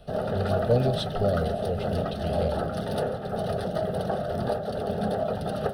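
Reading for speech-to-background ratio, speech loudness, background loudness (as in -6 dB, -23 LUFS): -1.0 dB, -30.0 LUFS, -29.0 LUFS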